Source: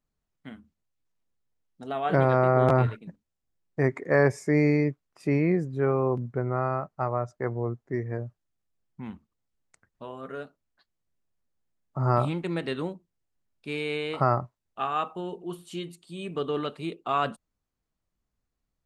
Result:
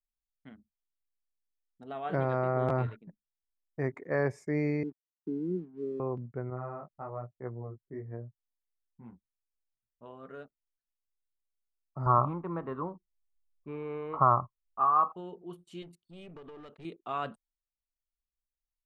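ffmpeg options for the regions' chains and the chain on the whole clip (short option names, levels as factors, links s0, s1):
-filter_complex "[0:a]asettb=1/sr,asplit=3[s0][s1][s2];[s0]atrim=end=4.834[s3];[s1]atrim=start=4.83:end=6,asetpts=PTS-STARTPTS,afade=t=in:d=0.004:c=qsin,afade=t=out:st=1.166:d=0.004:c=qsin,asuperpass=centerf=270:order=8:qfactor=1.1,aeval=exprs='sgn(val(0))*max(abs(val(0))-0.00133,0)':c=same[s4];[s2]atrim=start=5.996[s5];[s3][s4]acrossfade=d=0.004:c1=hsin:c2=qsin[s6];[s6][s5]acrossfade=d=0.004:c1=qsin:c2=hsin,asettb=1/sr,asplit=3[s7][s8][s9];[s7]atrim=end=6.504[s10];[s8]atrim=start=6.5:end=10.06,asetpts=PTS-STARTPTS,afade=t=in:d=0.004:c=qsin,afade=t=out:st=3.556:d=0.004:c=qsin,equalizer=f=4000:t=o:w=1.4:g=-14.5,flanger=delay=16:depth=4:speed=1.1[s11];[s9]atrim=start=10.056[s12];[s10][s11]acrossfade=d=0.004:c1=hsin:c2=qsin[s13];[s13][s12]acrossfade=d=0.004:c1=qsin:c2=hsin,asettb=1/sr,asplit=3[s14][s15][s16];[s14]atrim=end=12.064[s17];[s15]atrim=start=12.06:end=15.12,asetpts=PTS-STARTPTS,afade=t=in:d=0.004:c=qsin,afade=t=out:st=3.056:d=0.004:c=qsin,lowpass=f=1100:t=q:w=8.2,lowshelf=f=82:g=11[s18];[s16]atrim=start=15.116[s19];[s17][s18]acrossfade=d=0.004:c1=hsin:c2=qsin[s20];[s20][s19]acrossfade=d=0.004:c1=qsin:c2=hsin,asettb=1/sr,asplit=3[s21][s22][s23];[s21]atrim=end=15.824[s24];[s22]atrim=start=15.82:end=16.85,asetpts=PTS-STARTPTS,afade=t=in:d=0.004:c=qsin,afade=t=out:st=1.026:d=0.004:c=qsin,acompressor=threshold=0.0224:ratio=16:attack=3.2:release=140:knee=1:detection=peak,aeval=exprs='clip(val(0),-1,0.01)':c=same[s25];[s23]atrim=start=16.846[s26];[s24][s25]acrossfade=d=0.004:c1=hsin:c2=qsin[s27];[s27][s26]acrossfade=d=0.004:c1=qsin:c2=hsin,anlmdn=0.00631,highshelf=f=4000:g=-7,volume=0.398"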